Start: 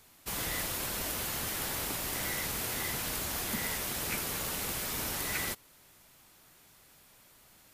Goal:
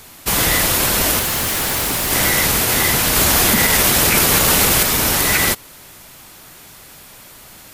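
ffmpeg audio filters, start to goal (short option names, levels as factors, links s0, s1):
-filter_complex "[0:a]asettb=1/sr,asplit=3[s0][s1][s2];[s0]atrim=end=1.194[s3];[s1]atrim=start=1.19:end=2.11,asetpts=PTS-STARTPTS,afade=t=in:d=0.004:c=qsin,afade=t=out:st=0.916:d=0.004:c=qsin,asoftclip=type=hard:threshold=0.0158[s4];[s2]atrim=start=2.106[s5];[s3][s4]acrossfade=d=0.004:c1=hsin:c2=qsin[s6];[s6][s5]acrossfade=d=0.004:c1=qsin:c2=hsin,asettb=1/sr,asplit=3[s7][s8][s9];[s7]atrim=end=3.164[s10];[s8]atrim=start=3.16:end=4.83,asetpts=PTS-STARTPTS,afade=t=in:d=0.004:c=qsin,afade=t=out:st=1.666:d=0.004:c=qsin,acontrast=52[s11];[s9]atrim=start=4.826[s12];[s10][s11]acrossfade=d=0.004:c1=hsin:c2=qsin[s13];[s13][s12]acrossfade=d=0.004:c1=qsin:c2=hsin,alimiter=level_in=12.6:limit=0.891:release=50:level=0:latency=1,volume=0.708"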